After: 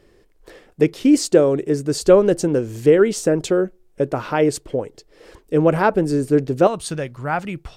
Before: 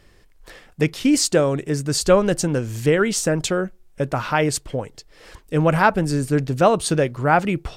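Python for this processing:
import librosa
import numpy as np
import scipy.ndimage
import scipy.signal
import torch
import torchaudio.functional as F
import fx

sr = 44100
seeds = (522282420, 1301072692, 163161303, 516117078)

y = fx.peak_eq(x, sr, hz=390.0, db=fx.steps((0.0, 12.0), (6.67, -3.5)), octaves=1.4)
y = y * librosa.db_to_amplitude(-5.0)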